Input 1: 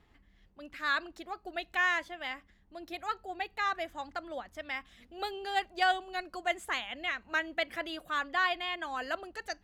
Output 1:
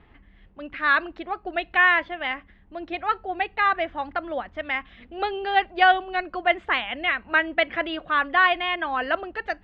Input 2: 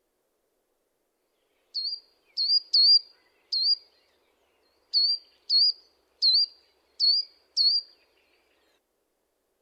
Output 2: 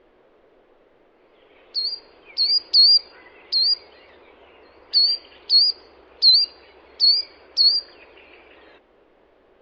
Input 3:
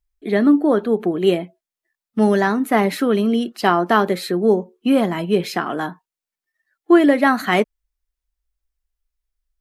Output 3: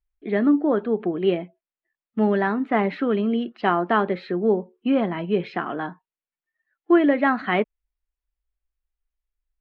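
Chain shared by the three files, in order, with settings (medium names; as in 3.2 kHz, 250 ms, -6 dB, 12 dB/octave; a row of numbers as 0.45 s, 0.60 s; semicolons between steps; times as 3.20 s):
low-pass 3.1 kHz 24 dB/octave; peak normalisation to -6 dBFS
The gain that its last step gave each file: +10.5 dB, +19.5 dB, -4.5 dB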